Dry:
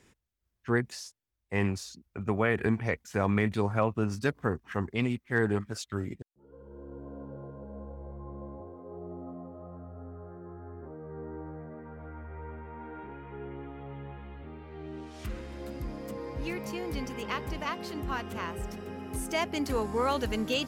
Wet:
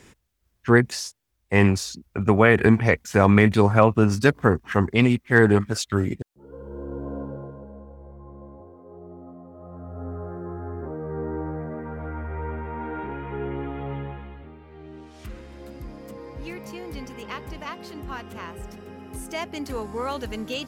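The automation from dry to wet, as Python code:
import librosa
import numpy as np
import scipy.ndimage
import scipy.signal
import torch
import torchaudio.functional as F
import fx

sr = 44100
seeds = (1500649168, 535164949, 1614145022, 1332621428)

y = fx.gain(x, sr, db=fx.line((7.17, 11.0), (7.85, -1.0), (9.45, -1.0), (10.08, 11.0), (13.95, 11.0), (14.57, -1.0)))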